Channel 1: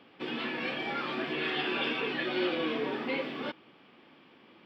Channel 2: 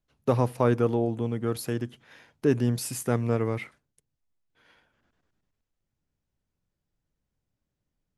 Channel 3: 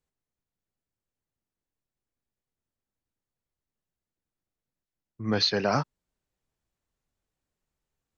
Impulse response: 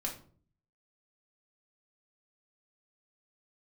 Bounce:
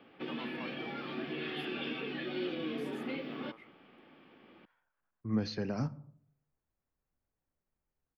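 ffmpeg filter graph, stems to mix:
-filter_complex "[0:a]bandreject=f=990:w=9.9,volume=0.944[s0];[1:a]highpass=570,equalizer=f=1100:w=0.91:g=10,volume=0.112[s1];[2:a]equalizer=f=3700:w=2:g=-12,adelay=50,volume=0.631,asplit=2[s2][s3];[s3]volume=0.251[s4];[3:a]atrim=start_sample=2205[s5];[s4][s5]afir=irnorm=-1:irlink=0[s6];[s0][s1][s2][s6]amix=inputs=4:normalize=0,equalizer=f=8600:w=0.59:g=-14.5,acrossover=split=320|3000[s7][s8][s9];[s8]acompressor=threshold=0.00708:ratio=6[s10];[s7][s10][s9]amix=inputs=3:normalize=0"

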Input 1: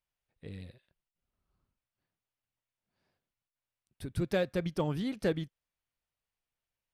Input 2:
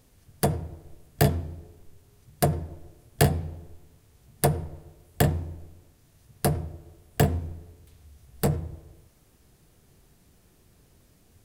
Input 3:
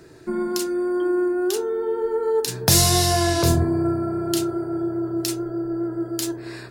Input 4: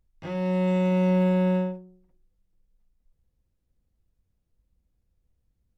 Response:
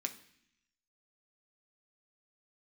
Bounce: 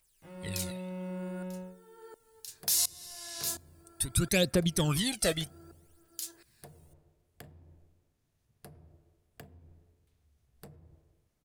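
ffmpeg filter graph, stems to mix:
-filter_complex "[0:a]equalizer=f=8900:w=1.5:g=9,crystalizer=i=6:c=0,aphaser=in_gain=1:out_gain=1:delay=1.6:decay=0.73:speed=0.66:type=triangular,volume=1.19[s0];[1:a]acompressor=threshold=0.0316:ratio=10,adelay=2200,volume=0.126,asplit=2[s1][s2];[s2]volume=0.211[s3];[2:a]aderivative,aeval=exprs='val(0)*pow(10,-26*if(lt(mod(-1.4*n/s,1),2*abs(-1.4)/1000),1-mod(-1.4*n/s,1)/(2*abs(-1.4)/1000),(mod(-1.4*n/s,1)-2*abs(-1.4)/1000)/(1-2*abs(-1.4)/1000))/20)':c=same,volume=0.944,asplit=2[s4][s5];[s5]volume=0.112[s6];[3:a]volume=0.141[s7];[4:a]atrim=start_sample=2205[s8];[s3][s6]amix=inputs=2:normalize=0[s9];[s9][s8]afir=irnorm=-1:irlink=0[s10];[s0][s1][s4][s7][s10]amix=inputs=5:normalize=0,highshelf=f=6800:g=-5,alimiter=limit=0.158:level=0:latency=1:release=295"

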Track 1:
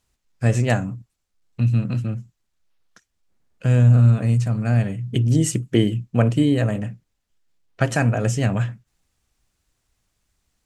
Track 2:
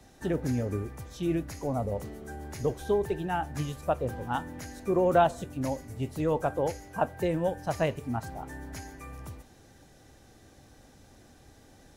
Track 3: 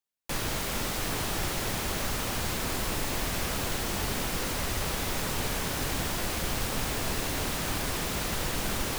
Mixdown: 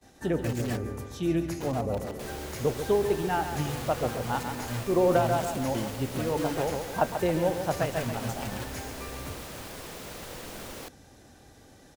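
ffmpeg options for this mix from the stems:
-filter_complex "[0:a]acrusher=bits=4:dc=4:mix=0:aa=0.000001,asplit=2[s0][s1];[s1]adelay=4.6,afreqshift=-0.4[s2];[s0][s2]amix=inputs=2:normalize=1,volume=0.211,asplit=2[s3][s4];[1:a]volume=1.26,asplit=2[s5][s6];[s6]volume=0.376[s7];[2:a]equalizer=f=510:t=o:w=0.77:g=6,adelay=1900,volume=0.299[s8];[s4]apad=whole_len=527471[s9];[s5][s9]sidechaincompress=threshold=0.0126:ratio=8:attack=47:release=185[s10];[s7]aecho=0:1:138|276|414|552|690|828|966:1|0.48|0.23|0.111|0.0531|0.0255|0.0122[s11];[s3][s10][s8][s11]amix=inputs=4:normalize=0,agate=range=0.1:threshold=0.002:ratio=16:detection=peak,lowshelf=f=67:g=-7"

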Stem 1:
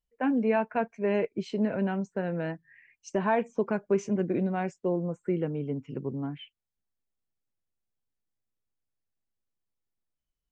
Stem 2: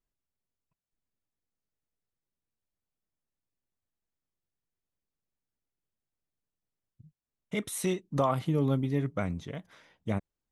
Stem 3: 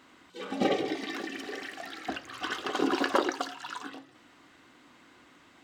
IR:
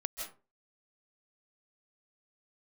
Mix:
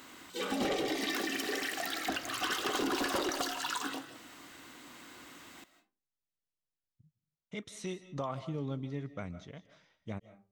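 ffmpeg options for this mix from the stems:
-filter_complex "[1:a]lowpass=f=6000:w=0.5412,lowpass=f=6000:w=1.3066,aemphasis=mode=production:type=50fm,volume=0.266,asplit=2[s0][s1];[s1]volume=0.335[s2];[2:a]aemphasis=mode=production:type=50fm,asoftclip=type=tanh:threshold=0.0473,volume=1.19,asplit=2[s3][s4];[s4]volume=0.398[s5];[3:a]atrim=start_sample=2205[s6];[s2][s5]amix=inputs=2:normalize=0[s7];[s7][s6]afir=irnorm=-1:irlink=0[s8];[s0][s3][s8]amix=inputs=3:normalize=0,acompressor=threshold=0.0316:ratio=6"

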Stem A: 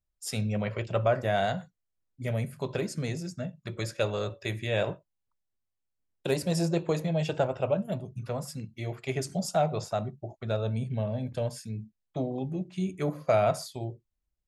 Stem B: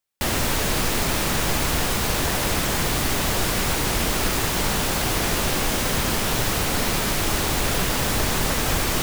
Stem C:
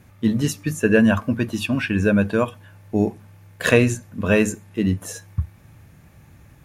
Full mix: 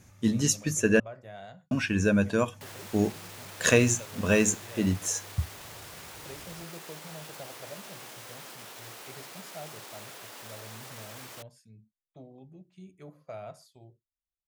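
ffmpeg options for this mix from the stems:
-filter_complex "[0:a]volume=0.126[s0];[1:a]highpass=410,alimiter=limit=0.075:level=0:latency=1:release=21,adelay=2400,volume=0.2[s1];[2:a]equalizer=f=6400:t=o:w=0.85:g=13.5,volume=0.501,asplit=3[s2][s3][s4];[s2]atrim=end=1,asetpts=PTS-STARTPTS,afade=t=out:st=0.996:d=0.004:c=hsin[s5];[s3]atrim=start=1:end=1.71,asetpts=PTS-STARTPTS,volume=0[s6];[s4]atrim=start=1.71,asetpts=PTS-STARTPTS,afade=t=in:d=0.004:c=hsin[s7];[s5][s6][s7]concat=n=3:v=0:a=1[s8];[s0][s1][s8]amix=inputs=3:normalize=0"

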